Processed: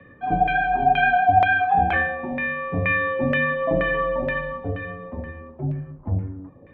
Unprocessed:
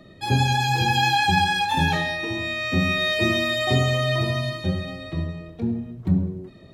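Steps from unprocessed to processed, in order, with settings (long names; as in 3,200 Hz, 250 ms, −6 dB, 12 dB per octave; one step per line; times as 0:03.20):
single-sideband voice off tune −88 Hz 180–3,200 Hz
auto-filter low-pass saw down 2.1 Hz 650–2,200 Hz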